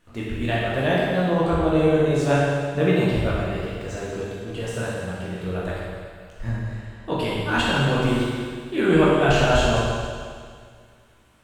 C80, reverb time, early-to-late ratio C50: 0.0 dB, 2.0 s, −2.0 dB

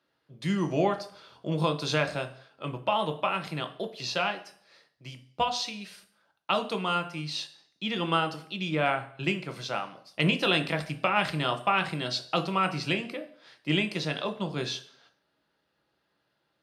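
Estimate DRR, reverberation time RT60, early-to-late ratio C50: 6.0 dB, 0.55 s, 14.0 dB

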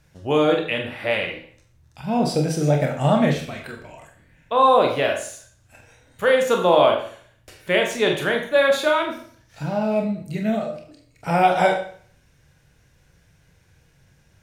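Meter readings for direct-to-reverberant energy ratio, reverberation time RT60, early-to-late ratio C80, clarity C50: 1.5 dB, 0.50 s, 10.5 dB, 7.5 dB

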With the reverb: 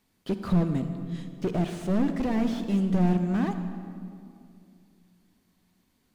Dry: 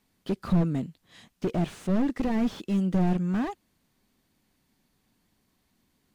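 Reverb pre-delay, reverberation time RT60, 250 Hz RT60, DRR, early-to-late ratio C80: 36 ms, 2.4 s, 2.9 s, 8.0 dB, 9.0 dB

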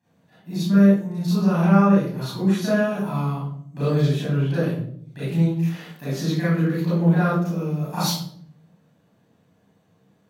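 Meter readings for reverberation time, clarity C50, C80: 0.60 s, −2.5 dB, 3.5 dB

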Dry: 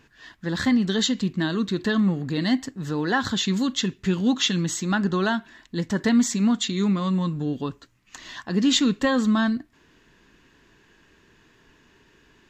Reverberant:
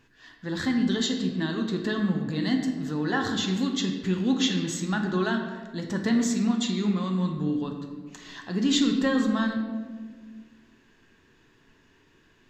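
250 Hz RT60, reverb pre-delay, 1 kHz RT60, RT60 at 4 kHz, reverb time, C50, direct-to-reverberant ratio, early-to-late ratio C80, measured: 2.2 s, 5 ms, 1.3 s, 0.90 s, 1.6 s, 5.5 dB, 3.0 dB, 7.0 dB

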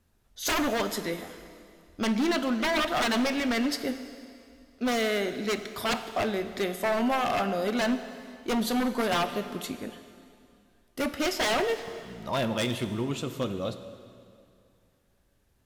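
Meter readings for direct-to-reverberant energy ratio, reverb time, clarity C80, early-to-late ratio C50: 9.5 dB, 2.4 s, 11.5 dB, 10.5 dB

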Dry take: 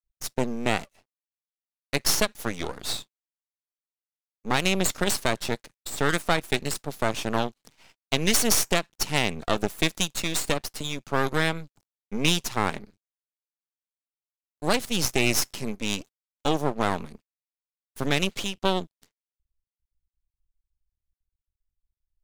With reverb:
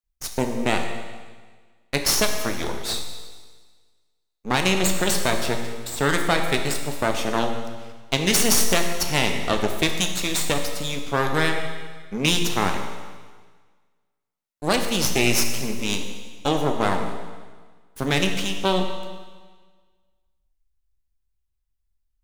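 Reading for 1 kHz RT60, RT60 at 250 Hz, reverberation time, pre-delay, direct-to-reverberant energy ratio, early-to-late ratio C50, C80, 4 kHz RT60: 1.5 s, 1.4 s, 1.5 s, 17 ms, 4.0 dB, 6.0 dB, 7.0 dB, 1.5 s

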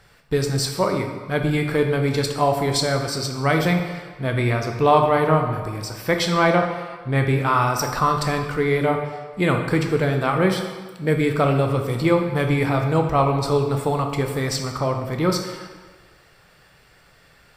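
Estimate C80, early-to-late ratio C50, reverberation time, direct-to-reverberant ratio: 7.5 dB, 5.5 dB, 1.4 s, 3.5 dB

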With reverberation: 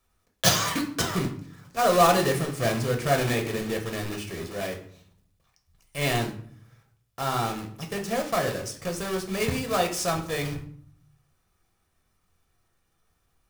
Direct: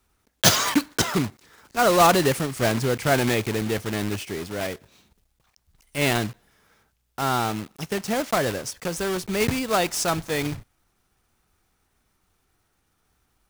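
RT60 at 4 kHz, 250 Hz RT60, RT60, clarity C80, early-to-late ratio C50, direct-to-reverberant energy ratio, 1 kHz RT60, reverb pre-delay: 0.40 s, 0.90 s, 0.55 s, 14.0 dB, 10.0 dB, 2.0 dB, 0.55 s, 6 ms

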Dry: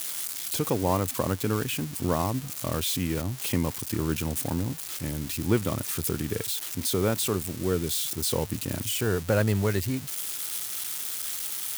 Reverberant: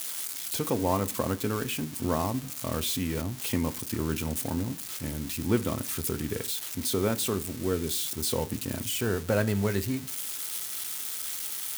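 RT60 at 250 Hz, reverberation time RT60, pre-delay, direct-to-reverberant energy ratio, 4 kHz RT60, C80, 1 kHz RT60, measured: 0.50 s, 0.40 s, 3 ms, 9.0 dB, 0.45 s, 24.5 dB, 0.40 s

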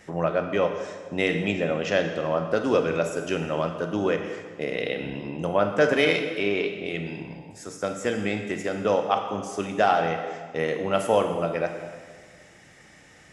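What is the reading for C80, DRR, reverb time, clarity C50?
8.0 dB, 5.0 dB, 1.6 s, 7.0 dB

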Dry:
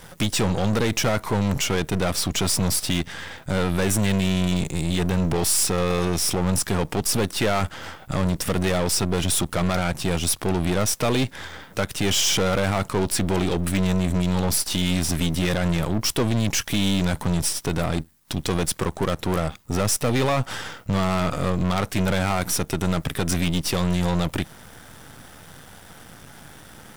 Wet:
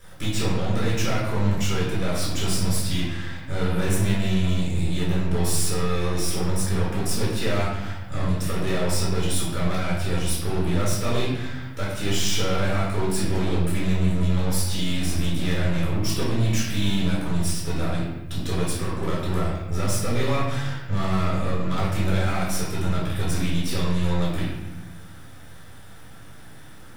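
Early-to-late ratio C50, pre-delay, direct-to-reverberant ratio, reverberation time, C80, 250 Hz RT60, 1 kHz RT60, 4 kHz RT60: 1.0 dB, 3 ms, −7.5 dB, 0.95 s, 3.5 dB, 1.6 s, 0.90 s, 0.75 s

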